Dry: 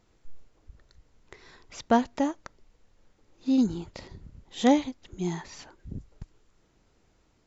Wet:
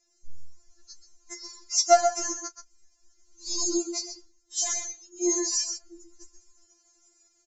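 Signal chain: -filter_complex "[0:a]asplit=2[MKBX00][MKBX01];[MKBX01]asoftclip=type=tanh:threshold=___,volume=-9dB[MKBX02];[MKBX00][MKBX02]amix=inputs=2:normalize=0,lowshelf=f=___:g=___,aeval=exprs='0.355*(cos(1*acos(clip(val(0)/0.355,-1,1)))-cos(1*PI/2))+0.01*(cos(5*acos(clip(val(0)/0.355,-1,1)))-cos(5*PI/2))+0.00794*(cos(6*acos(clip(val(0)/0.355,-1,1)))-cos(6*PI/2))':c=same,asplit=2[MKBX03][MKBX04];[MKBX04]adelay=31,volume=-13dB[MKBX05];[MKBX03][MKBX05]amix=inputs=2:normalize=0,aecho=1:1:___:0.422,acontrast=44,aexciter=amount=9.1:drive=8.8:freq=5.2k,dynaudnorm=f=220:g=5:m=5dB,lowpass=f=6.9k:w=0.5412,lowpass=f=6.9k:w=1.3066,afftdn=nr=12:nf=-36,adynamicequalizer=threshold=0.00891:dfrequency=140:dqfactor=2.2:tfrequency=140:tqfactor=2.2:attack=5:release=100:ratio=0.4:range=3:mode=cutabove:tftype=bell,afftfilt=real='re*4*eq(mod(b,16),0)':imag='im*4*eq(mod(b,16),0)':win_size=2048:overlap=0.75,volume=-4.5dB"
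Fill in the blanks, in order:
-19dB, 180, -11.5, 129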